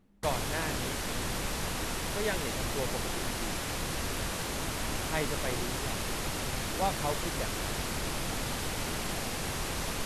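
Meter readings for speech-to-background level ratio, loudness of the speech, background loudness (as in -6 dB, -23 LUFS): -4.5 dB, -38.5 LUFS, -34.0 LUFS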